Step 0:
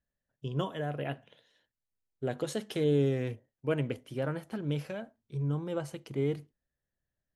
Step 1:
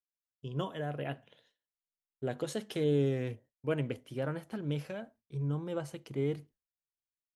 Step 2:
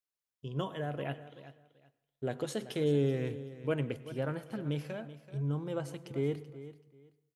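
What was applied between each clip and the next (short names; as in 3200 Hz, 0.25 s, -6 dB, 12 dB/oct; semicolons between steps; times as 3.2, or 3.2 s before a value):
gate with hold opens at -54 dBFS; AGC gain up to 6 dB; gain -8 dB
feedback echo 0.382 s, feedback 22%, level -15 dB; on a send at -17.5 dB: reverb RT60 0.70 s, pre-delay 90 ms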